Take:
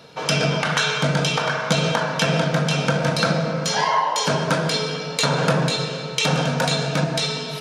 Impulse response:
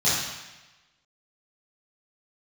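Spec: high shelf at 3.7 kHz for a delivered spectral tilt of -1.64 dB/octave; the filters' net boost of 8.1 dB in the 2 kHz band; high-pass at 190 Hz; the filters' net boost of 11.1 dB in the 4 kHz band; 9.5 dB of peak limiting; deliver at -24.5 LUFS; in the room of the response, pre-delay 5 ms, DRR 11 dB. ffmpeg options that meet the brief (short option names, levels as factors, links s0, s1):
-filter_complex "[0:a]highpass=190,equalizer=f=2000:t=o:g=7.5,highshelf=f=3700:g=3.5,equalizer=f=4000:t=o:g=9,alimiter=limit=0.562:level=0:latency=1,asplit=2[s0][s1];[1:a]atrim=start_sample=2205,adelay=5[s2];[s1][s2]afir=irnorm=-1:irlink=0,volume=0.0501[s3];[s0][s3]amix=inputs=2:normalize=0,volume=0.335"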